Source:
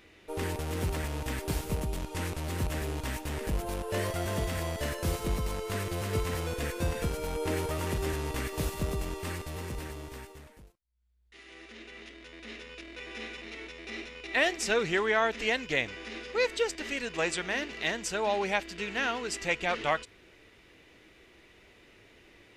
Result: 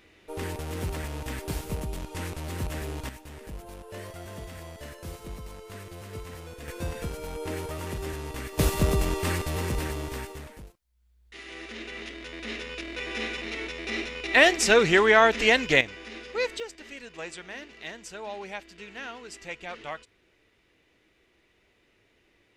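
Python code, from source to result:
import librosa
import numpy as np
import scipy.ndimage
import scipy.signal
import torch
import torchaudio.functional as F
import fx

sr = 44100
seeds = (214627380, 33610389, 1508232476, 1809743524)

y = fx.gain(x, sr, db=fx.steps((0.0, -0.5), (3.09, -9.0), (6.68, -2.5), (8.59, 8.5), (15.81, -0.5), (16.6, -8.5)))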